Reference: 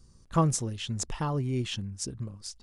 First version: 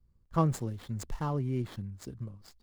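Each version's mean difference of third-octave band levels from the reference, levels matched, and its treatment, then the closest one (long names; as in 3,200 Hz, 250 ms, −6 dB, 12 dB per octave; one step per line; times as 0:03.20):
4.0 dB: running median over 15 samples
notch filter 2,500 Hz, Q 24
in parallel at −1 dB: brickwall limiter −24.5 dBFS, peak gain reduction 11 dB
on the sum: multiband upward and downward expander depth 40%
level −7 dB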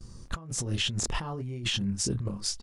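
7.5 dB: high-shelf EQ 6,400 Hz −4 dB
double-tracking delay 25 ms −5.5 dB
compressor whose output falls as the input rises −37 dBFS, ratio −1
noise gate with hold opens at −46 dBFS
level +4 dB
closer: first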